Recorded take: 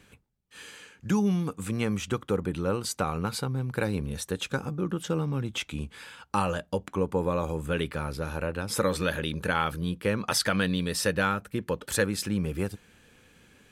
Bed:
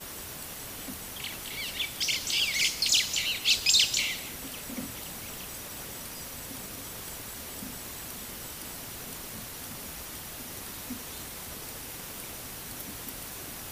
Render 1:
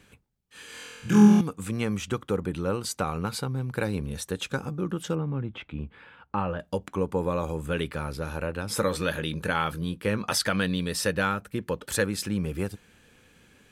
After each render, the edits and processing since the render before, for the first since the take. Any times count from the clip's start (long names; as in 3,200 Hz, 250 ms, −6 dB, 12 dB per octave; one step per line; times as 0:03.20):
0:00.67–0:01.41: flutter between parallel walls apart 4.1 metres, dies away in 1.3 s
0:05.15–0:06.60: high-frequency loss of the air 490 metres
0:08.63–0:10.37: double-tracking delay 19 ms −13 dB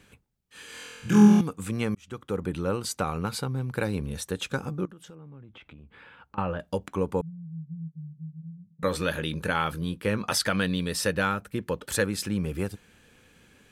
0:01.95–0:02.48: fade in
0:04.85–0:06.38: downward compressor, threshold −45 dBFS
0:07.21–0:08.83: flat-topped band-pass 160 Hz, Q 7.6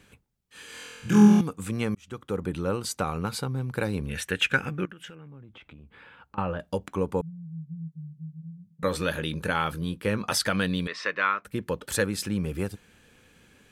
0:04.09–0:05.28: flat-topped bell 2,100 Hz +13 dB 1.3 octaves
0:10.87–0:11.45: loudspeaker in its box 480–4,600 Hz, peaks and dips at 510 Hz −5 dB, 810 Hz −9 dB, 1,100 Hz +10 dB, 2,100 Hz +9 dB, 3,100 Hz −3 dB, 4,400 Hz −5 dB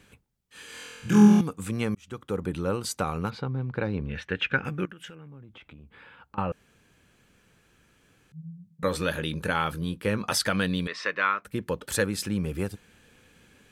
0:03.30–0:04.65: high-frequency loss of the air 250 metres
0:06.52–0:08.32: fill with room tone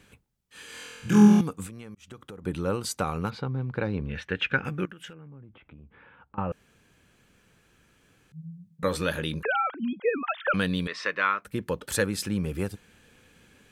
0:01.66–0:02.46: downward compressor 16 to 1, threshold −38 dBFS
0:05.13–0:06.51: high-frequency loss of the air 470 metres
0:09.43–0:10.54: three sine waves on the formant tracks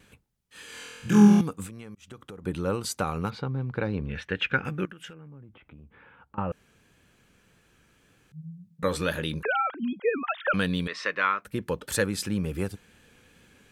tape wow and flutter 26 cents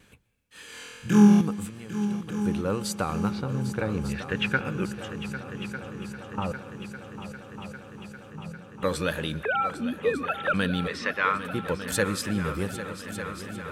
echo machine with several playback heads 400 ms, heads second and third, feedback 72%, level −12.5 dB
dense smooth reverb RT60 1.4 s, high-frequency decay 0.95×, pre-delay 110 ms, DRR 18.5 dB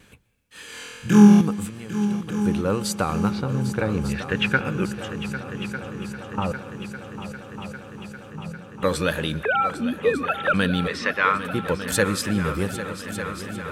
level +4.5 dB